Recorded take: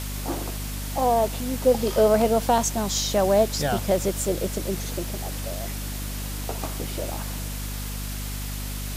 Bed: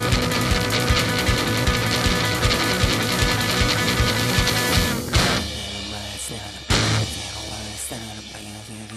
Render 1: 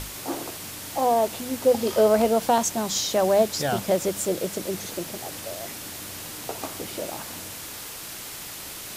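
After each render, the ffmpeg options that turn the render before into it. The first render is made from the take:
ffmpeg -i in.wav -af "bandreject=frequency=50:width_type=h:width=6,bandreject=frequency=100:width_type=h:width=6,bandreject=frequency=150:width_type=h:width=6,bandreject=frequency=200:width_type=h:width=6,bandreject=frequency=250:width_type=h:width=6" out.wav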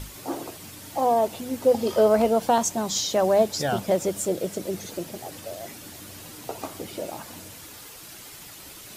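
ffmpeg -i in.wav -af "afftdn=noise_reduction=8:noise_floor=-38" out.wav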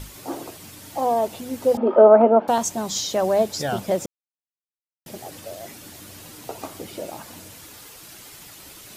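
ffmpeg -i in.wav -filter_complex "[0:a]asettb=1/sr,asplit=3[link_01][link_02][link_03];[link_01]atrim=end=1.774[link_04];[link_02]atrim=start=1.77:end=2.48,asetpts=PTS-STARTPTS,afade=type=in:duration=0.004:curve=qsin,afade=type=out:start_time=0.706:duration=0.004:curve=qsin,highpass=frequency=210:width=0.5412,highpass=frequency=210:width=1.3066,equalizer=frequency=250:width_type=q:width=4:gain=9,equalizer=frequency=370:width_type=q:width=4:gain=7,equalizer=frequency=600:width_type=q:width=4:gain=9,equalizer=frequency=860:width_type=q:width=4:gain=9,equalizer=frequency=1300:width_type=q:width=4:gain=8,equalizer=frequency=2000:width_type=q:width=4:gain=-5,lowpass=frequency=2200:width=0.5412,lowpass=frequency=2200:width=1.3066[link_05];[link_03]atrim=start=2.476[link_06];[link_04][link_05]acrossfade=duration=0.004:curve1=hsin:curve2=qsin[link_07];[link_07][link_06]acrossfade=duration=0.004:curve1=qsin:curve2=hsin,asplit=3[link_08][link_09][link_10];[link_08]atrim=end=4.06,asetpts=PTS-STARTPTS,afade=type=out:start_time=4.056:duration=0.004:curve=hsin[link_11];[link_09]atrim=start=4.06:end=5.06,asetpts=PTS-STARTPTS,volume=0[link_12];[link_10]atrim=start=5.06,asetpts=PTS-STARTPTS,afade=type=in:duration=0.004:curve=hsin[link_13];[link_11][link_12][link_13]concat=n=3:v=0:a=1" out.wav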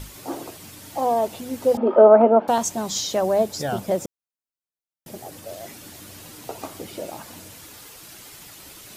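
ffmpeg -i in.wav -filter_complex "[0:a]asettb=1/sr,asplit=3[link_01][link_02][link_03];[link_01]atrim=end=3.194[link_04];[link_02]atrim=start=3.19:end=5.49,asetpts=PTS-STARTPTS,afade=type=in:duration=0.004:curve=qsin,afade=type=out:start_time=2.296:duration=0.004:curve=qsin,equalizer=frequency=3100:width=0.49:gain=-3.5[link_05];[link_03]atrim=start=5.486[link_06];[link_04][link_05]acrossfade=duration=0.004:curve1=hsin:curve2=qsin[link_07];[link_07][link_06]acrossfade=duration=0.004:curve1=qsin:curve2=hsin" out.wav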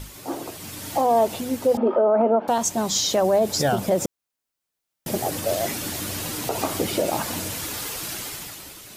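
ffmpeg -i in.wav -af "dynaudnorm=framelen=130:gausssize=11:maxgain=12.5dB,alimiter=limit=-11.5dB:level=0:latency=1:release=75" out.wav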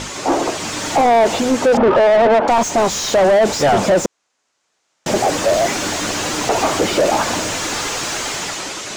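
ffmpeg -i in.wav -filter_complex "[0:a]lowpass=frequency=6900:width_type=q:width=2.9,asplit=2[link_01][link_02];[link_02]highpass=frequency=720:poles=1,volume=31dB,asoftclip=type=tanh:threshold=-4dB[link_03];[link_01][link_03]amix=inputs=2:normalize=0,lowpass=frequency=1200:poles=1,volume=-6dB" out.wav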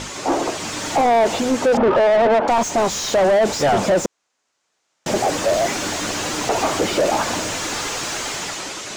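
ffmpeg -i in.wav -af "volume=-3dB" out.wav

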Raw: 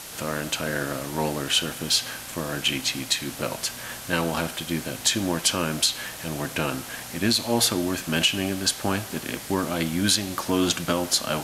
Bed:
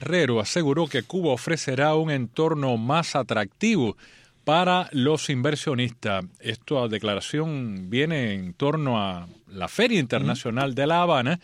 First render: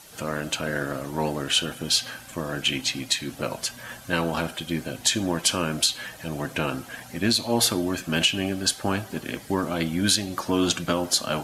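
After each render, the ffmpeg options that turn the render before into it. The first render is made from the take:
ffmpeg -i in.wav -af "afftdn=noise_reduction=11:noise_floor=-38" out.wav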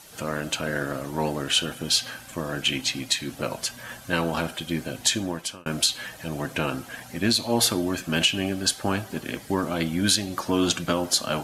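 ffmpeg -i in.wav -filter_complex "[0:a]asplit=2[link_01][link_02];[link_01]atrim=end=5.66,asetpts=PTS-STARTPTS,afade=type=out:start_time=5.09:duration=0.57[link_03];[link_02]atrim=start=5.66,asetpts=PTS-STARTPTS,afade=type=in:duration=0.004:curve=hsin[link_04];[link_03][link_04]concat=n=2:v=0:a=1" out.wav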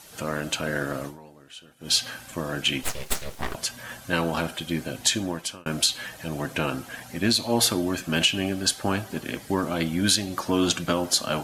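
ffmpeg -i in.wav -filter_complex "[0:a]asettb=1/sr,asplit=3[link_01][link_02][link_03];[link_01]atrim=end=2.834[link_04];[link_02]atrim=start=2.83:end=3.55,asetpts=PTS-STARTPTS,afade=type=in:duration=0.004:curve=qsin,afade=type=out:start_time=0.716:duration=0.004:curve=qsin,aeval=exprs='abs(val(0))':channel_layout=same[link_05];[link_03]atrim=start=3.546[link_06];[link_04][link_05]acrossfade=duration=0.004:curve1=hsin:curve2=qsin[link_07];[link_07][link_06]acrossfade=duration=0.004:curve1=qsin:curve2=hsin,asplit=3[link_08][link_09][link_10];[link_08]atrim=end=1.21,asetpts=PTS-STARTPTS,afade=type=out:start_time=1.06:duration=0.15:curve=qua:silence=0.0794328[link_11];[link_09]atrim=start=1.21:end=1.76,asetpts=PTS-STARTPTS,volume=-22dB[link_12];[link_10]atrim=start=1.76,asetpts=PTS-STARTPTS,afade=type=in:duration=0.15:curve=qua:silence=0.0794328[link_13];[link_11][link_12][link_13]concat=n=3:v=0:a=1" out.wav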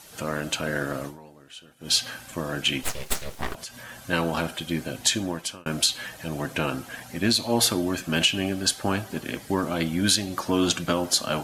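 ffmpeg -i in.wav -filter_complex "[0:a]asettb=1/sr,asplit=3[link_01][link_02][link_03];[link_01]atrim=end=3.544[link_04];[link_02]atrim=start=3.54:end=4.08,asetpts=PTS-STARTPTS,afade=type=in:duration=0.004:curve=qsin,afade=type=out:start_time=0.536:duration=0.004:curve=qsin,acompressor=threshold=-38dB:ratio=2.5:attack=3.2:release=140:knee=1:detection=peak[link_05];[link_03]atrim=start=4.076[link_06];[link_04][link_05]acrossfade=duration=0.004:curve1=hsin:curve2=qsin[link_07];[link_07][link_06]acrossfade=duration=0.004:curve1=qsin:curve2=hsin" out.wav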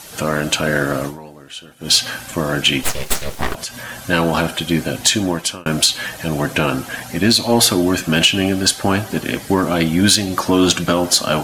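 ffmpeg -i in.wav -filter_complex "[0:a]asplit=2[link_01][link_02];[link_02]alimiter=limit=-14.5dB:level=0:latency=1:release=213,volume=-2dB[link_03];[link_01][link_03]amix=inputs=2:normalize=0,acontrast=48" out.wav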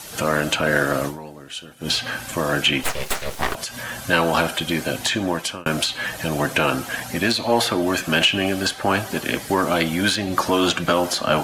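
ffmpeg -i in.wav -filter_complex "[0:a]acrossover=split=420|1500|2900[link_01][link_02][link_03][link_04];[link_01]alimiter=limit=-18.5dB:level=0:latency=1:release=448[link_05];[link_04]acompressor=threshold=-27dB:ratio=6[link_06];[link_05][link_02][link_03][link_06]amix=inputs=4:normalize=0" out.wav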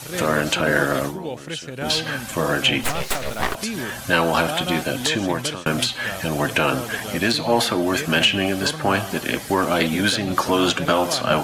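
ffmpeg -i in.wav -i bed.wav -filter_complex "[1:a]volume=-8dB[link_01];[0:a][link_01]amix=inputs=2:normalize=0" out.wav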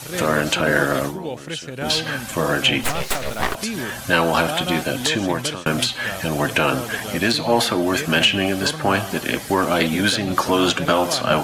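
ffmpeg -i in.wav -af "volume=1dB" out.wav

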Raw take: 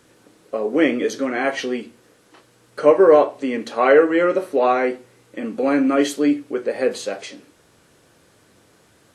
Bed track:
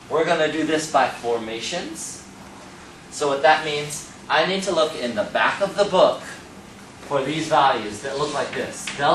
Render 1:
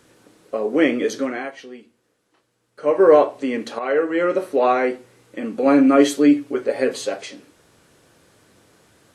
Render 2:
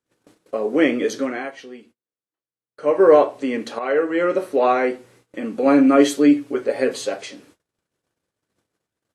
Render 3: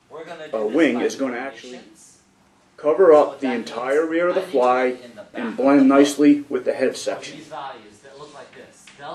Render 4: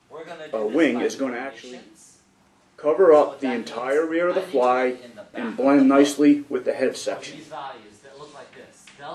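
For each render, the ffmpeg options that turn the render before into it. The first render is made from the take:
ffmpeg -i in.wav -filter_complex "[0:a]asettb=1/sr,asplit=3[link_01][link_02][link_03];[link_01]atrim=end=5.654[link_04];[link_02]atrim=start=5.65:end=7.14,asetpts=PTS-STARTPTS,afade=type=in:duration=0.004:curve=qsin,afade=type=out:start_time=1.486:duration=0.004:curve=qsin,aecho=1:1:7.2:0.65,atrim=end_sample=65709[link_05];[link_03]atrim=start=7.136[link_06];[link_04][link_05]acrossfade=duration=0.004:curve1=hsin:curve2=qsin[link_07];[link_07][link_06]acrossfade=duration=0.004:curve1=qsin:curve2=hsin,asplit=4[link_08][link_09][link_10][link_11];[link_08]atrim=end=1.51,asetpts=PTS-STARTPTS,afade=type=out:start_time=1.22:duration=0.29:silence=0.199526[link_12];[link_09]atrim=start=1.51:end=2.78,asetpts=PTS-STARTPTS,volume=-14dB[link_13];[link_10]atrim=start=2.78:end=3.79,asetpts=PTS-STARTPTS,afade=type=in:duration=0.29:silence=0.199526,afade=type=out:start_time=1.006:duration=0.004:curve=hsin:silence=0.251189[link_14];[link_11]atrim=start=3.79,asetpts=PTS-STARTPTS,afade=type=in:duration=0.63:silence=0.251189[link_15];[link_12][link_13][link_14][link_15]concat=n=4:v=0:a=1" out.wav
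ffmpeg -i in.wav -af "agate=range=-31dB:threshold=-51dB:ratio=16:detection=peak" out.wav
ffmpeg -i in.wav -i bed.wav -filter_complex "[1:a]volume=-16dB[link_01];[0:a][link_01]amix=inputs=2:normalize=0" out.wav
ffmpeg -i in.wav -af "volume=-2dB" out.wav

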